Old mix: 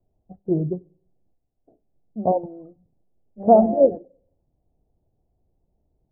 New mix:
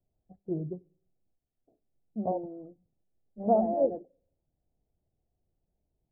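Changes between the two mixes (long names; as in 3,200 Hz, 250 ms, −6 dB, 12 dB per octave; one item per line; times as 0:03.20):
first voice −11.0 dB
second voice −3.5 dB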